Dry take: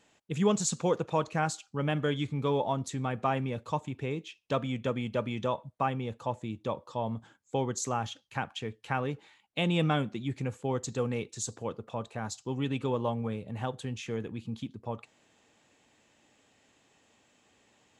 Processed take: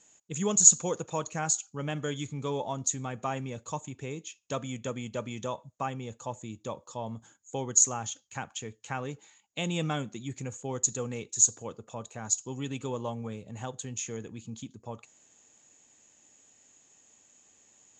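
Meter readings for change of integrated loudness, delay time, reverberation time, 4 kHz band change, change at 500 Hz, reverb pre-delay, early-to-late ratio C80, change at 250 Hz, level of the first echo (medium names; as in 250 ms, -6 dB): +3.0 dB, no echo, no reverb, -1.0 dB, -4.0 dB, no reverb, no reverb, -4.0 dB, no echo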